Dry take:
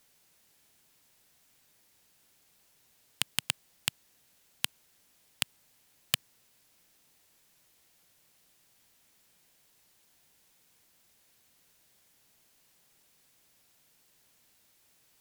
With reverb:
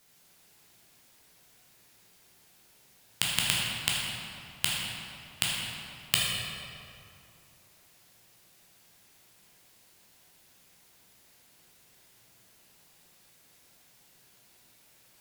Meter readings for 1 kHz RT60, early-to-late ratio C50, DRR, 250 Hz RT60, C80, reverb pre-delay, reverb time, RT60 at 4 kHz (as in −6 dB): 2.5 s, −1.5 dB, −5.0 dB, 2.7 s, 0.0 dB, 11 ms, 2.5 s, 1.6 s